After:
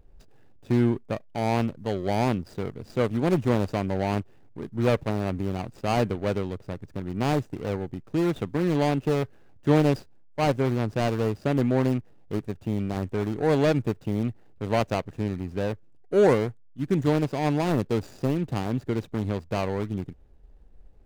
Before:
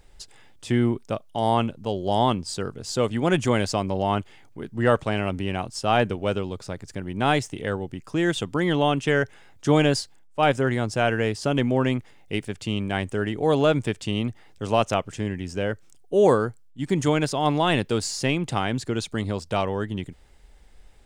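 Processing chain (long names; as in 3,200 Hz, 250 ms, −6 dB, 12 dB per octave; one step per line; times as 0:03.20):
running median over 41 samples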